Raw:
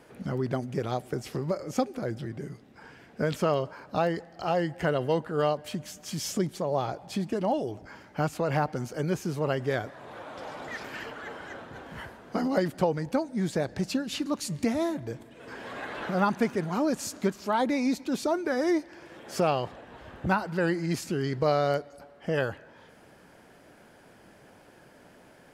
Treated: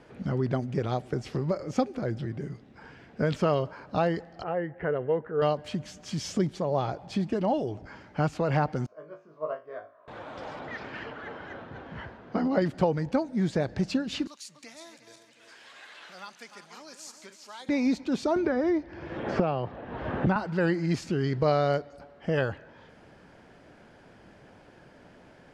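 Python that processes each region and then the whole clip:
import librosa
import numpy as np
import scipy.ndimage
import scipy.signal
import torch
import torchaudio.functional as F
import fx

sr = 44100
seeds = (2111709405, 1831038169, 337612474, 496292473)

y = fx.chain(x, sr, fx.ladder_lowpass(hz=2300.0, resonance_pct=40),
    fx.peak_eq(hz=450.0, db=10.0, octaves=0.5), at=(4.43, 5.42))
y = fx.chain(y, sr, fx.double_bandpass(hz=830.0, octaves=0.75),
    fx.room_flutter(wall_m=3.3, rt60_s=0.32),
    fx.upward_expand(threshold_db=-44.0, expansion=1.5), at=(8.86, 10.08))
y = fx.chain(y, sr, fx.highpass(hz=59.0, slope=12),
    fx.air_absorb(metres=120.0), at=(10.59, 12.62))
y = fx.chain(y, sr, fx.reverse_delay_fb(ms=178, feedback_pct=58, wet_db=-10.5),
    fx.differentiator(),
    fx.band_squash(depth_pct=40), at=(14.27, 17.69))
y = fx.chain(y, sr, fx.highpass(hz=46.0, slope=12),
    fx.spacing_loss(db_at_10k=22),
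    fx.band_squash(depth_pct=100), at=(18.36, 20.36))
y = scipy.signal.sosfilt(scipy.signal.butter(2, 5600.0, 'lowpass', fs=sr, output='sos'), y)
y = fx.low_shelf(y, sr, hz=150.0, db=6.0)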